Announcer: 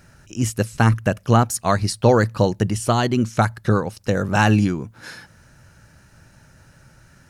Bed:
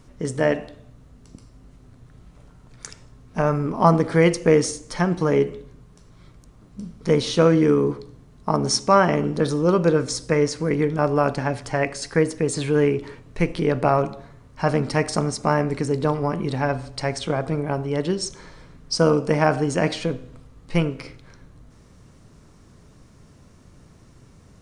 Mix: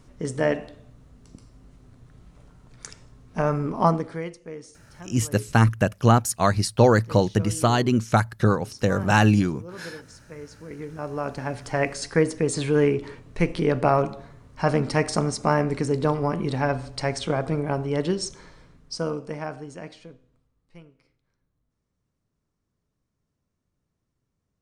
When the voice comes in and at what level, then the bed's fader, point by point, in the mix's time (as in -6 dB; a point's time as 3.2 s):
4.75 s, -1.5 dB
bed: 3.83 s -2.5 dB
4.4 s -22 dB
10.33 s -22 dB
11.82 s -1 dB
18.1 s -1 dB
20.94 s -28.5 dB